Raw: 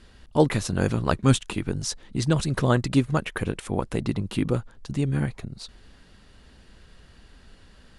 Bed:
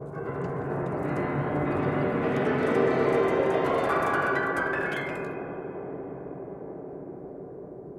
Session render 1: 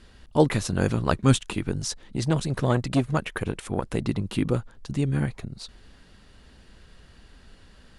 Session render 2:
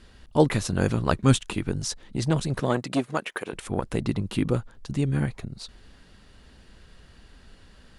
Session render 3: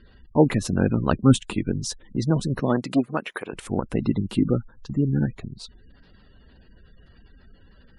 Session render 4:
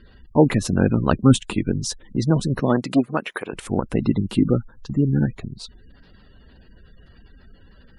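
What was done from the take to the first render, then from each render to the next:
1.86–3.9 core saturation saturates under 440 Hz
2.59–3.52 HPF 150 Hz -> 410 Hz
spectral gate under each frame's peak -25 dB strong; dynamic EQ 240 Hz, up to +6 dB, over -36 dBFS, Q 1.5
gain +3 dB; limiter -2 dBFS, peak gain reduction 1.5 dB

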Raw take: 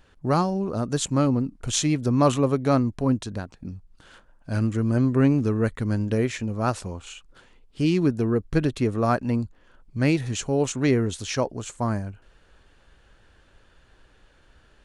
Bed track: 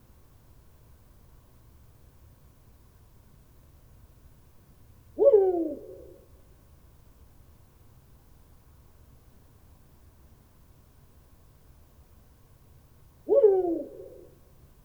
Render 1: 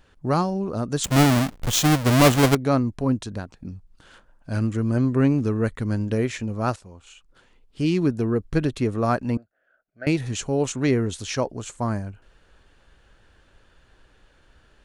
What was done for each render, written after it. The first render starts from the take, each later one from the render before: 1.04–2.55 half-waves squared off; 6.76–7.93 fade in, from -14.5 dB; 9.37–10.07 double band-pass 990 Hz, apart 1.2 oct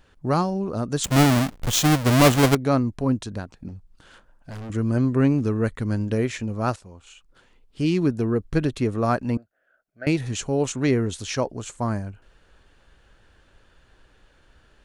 3.68–4.7 overloaded stage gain 33.5 dB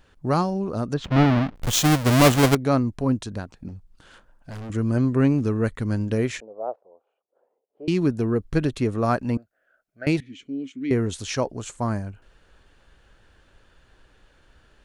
0.94–1.56 air absorption 290 m; 6.4–7.88 Butterworth band-pass 580 Hz, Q 1.8; 10.2–10.91 vowel filter i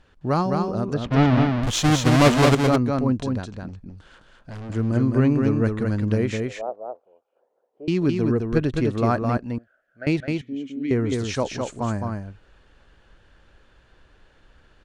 air absorption 53 m; echo 0.211 s -4 dB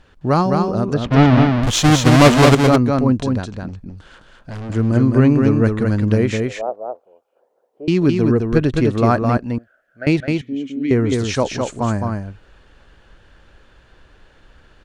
gain +6 dB; limiter -1 dBFS, peak gain reduction 1 dB

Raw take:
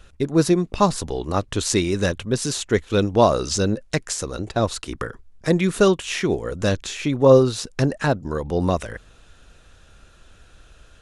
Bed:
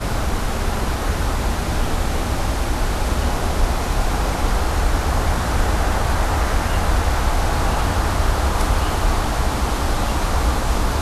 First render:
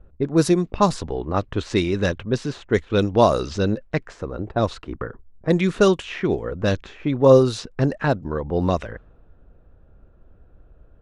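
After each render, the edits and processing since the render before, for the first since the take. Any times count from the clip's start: low-pass opened by the level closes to 590 Hz, open at -12.5 dBFS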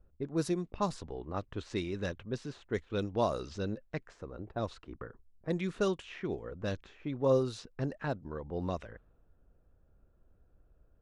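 gain -14.5 dB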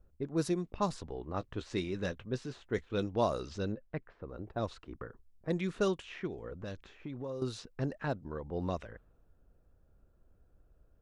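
1.38–3.07 doubler 16 ms -12.5 dB; 3.72–4.29 air absorption 390 m; 6.27–7.42 compressor, threshold -37 dBFS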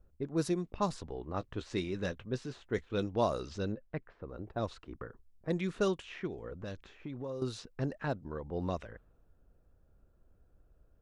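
nothing audible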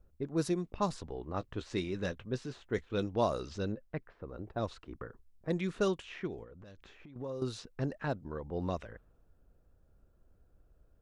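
6.43–7.16 compressor 8:1, threshold -49 dBFS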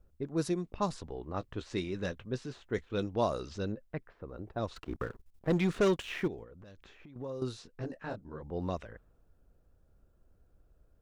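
4.76–6.28 sample leveller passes 2; 7.52–8.41 detuned doubles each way 44 cents -> 60 cents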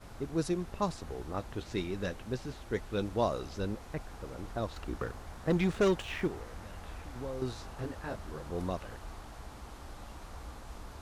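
add bed -27 dB

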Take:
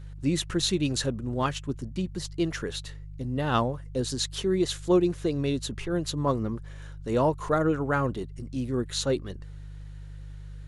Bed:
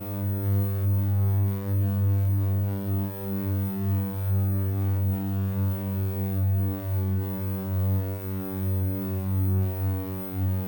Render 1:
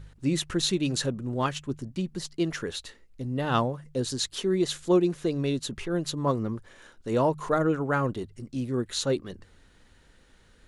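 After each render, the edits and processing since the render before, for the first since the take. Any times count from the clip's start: de-hum 50 Hz, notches 3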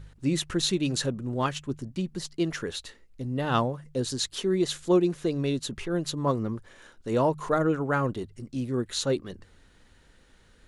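nothing audible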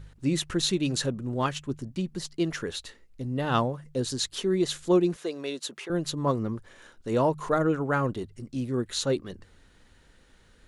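5.16–5.9 HPF 440 Hz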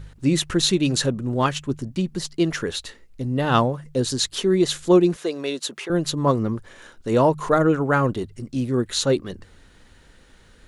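gain +6.5 dB

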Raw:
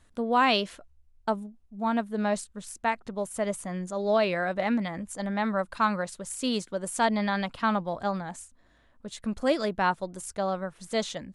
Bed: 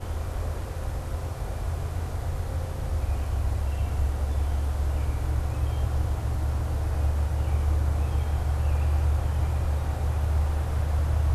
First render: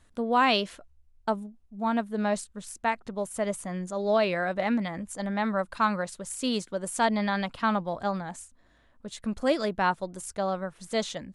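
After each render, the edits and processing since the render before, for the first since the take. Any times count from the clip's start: nothing audible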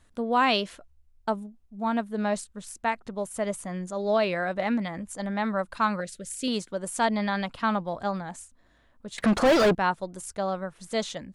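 6–6.48 Butterworth band-stop 940 Hz, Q 0.94; 9.18–9.75 overdrive pedal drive 35 dB, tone 2000 Hz, clips at -12 dBFS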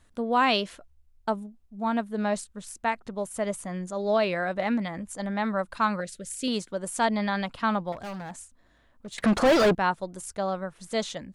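7.92–9.14 overloaded stage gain 34 dB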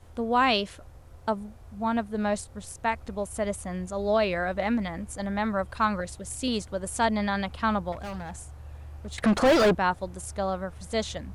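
add bed -18.5 dB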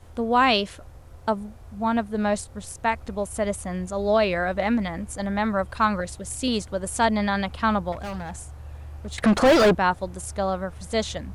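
gain +3.5 dB

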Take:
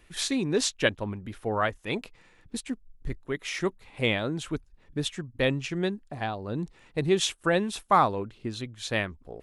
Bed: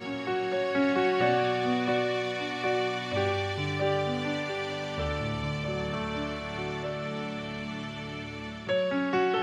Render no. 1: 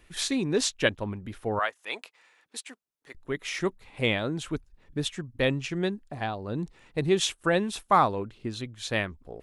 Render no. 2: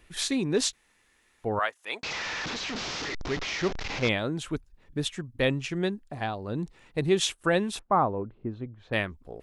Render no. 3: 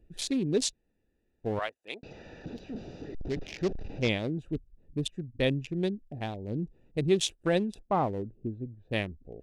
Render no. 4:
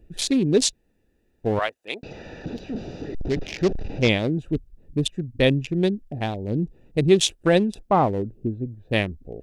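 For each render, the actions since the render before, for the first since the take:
1.59–3.15 HPF 710 Hz
0.73–1.44 room tone; 2.03–4.09 delta modulation 32 kbps, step -27 dBFS; 7.79–8.93 LPF 1000 Hz
Wiener smoothing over 41 samples; bell 1300 Hz -9 dB 1.1 oct
gain +8.5 dB

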